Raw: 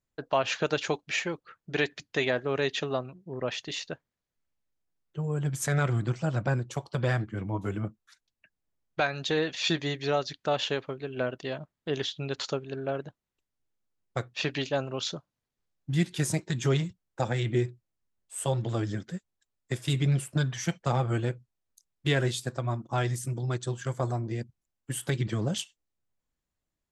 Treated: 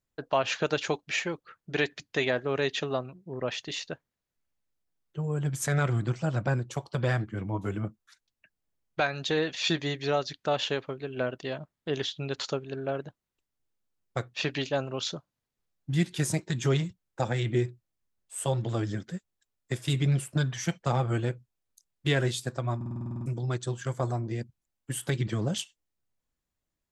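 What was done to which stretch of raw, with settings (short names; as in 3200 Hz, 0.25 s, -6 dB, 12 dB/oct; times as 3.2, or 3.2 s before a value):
22.76 stutter in place 0.05 s, 10 plays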